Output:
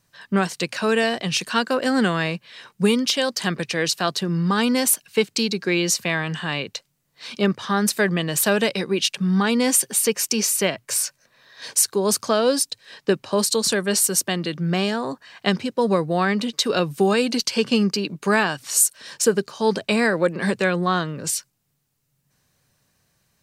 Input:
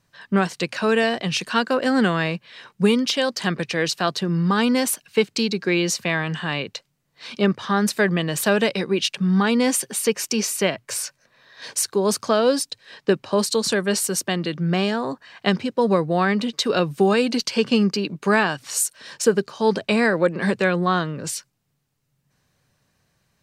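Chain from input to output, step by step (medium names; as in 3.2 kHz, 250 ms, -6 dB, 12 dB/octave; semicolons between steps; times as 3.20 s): treble shelf 6.2 kHz +9 dB; trim -1 dB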